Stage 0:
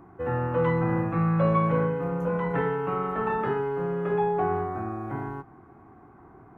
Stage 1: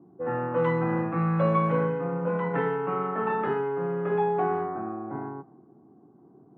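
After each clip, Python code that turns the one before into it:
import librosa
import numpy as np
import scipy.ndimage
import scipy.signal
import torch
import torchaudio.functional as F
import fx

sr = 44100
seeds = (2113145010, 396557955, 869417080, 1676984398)

y = scipy.signal.sosfilt(scipy.signal.butter(4, 150.0, 'highpass', fs=sr, output='sos'), x)
y = fx.env_lowpass(y, sr, base_hz=370.0, full_db=-19.5)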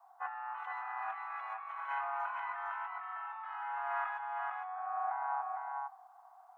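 y = scipy.signal.sosfilt(scipy.signal.butter(16, 700.0, 'highpass', fs=sr, output='sos'), x)
y = fx.over_compress(y, sr, threshold_db=-43.0, ratio=-1.0)
y = y + 10.0 ** (-4.0 / 20.0) * np.pad(y, (int(456 * sr / 1000.0), 0))[:len(y)]
y = y * librosa.db_to_amplitude(1.0)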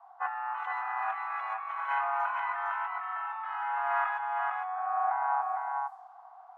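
y = fx.env_lowpass(x, sr, base_hz=2600.0, full_db=-36.0)
y = y * librosa.db_to_amplitude(7.0)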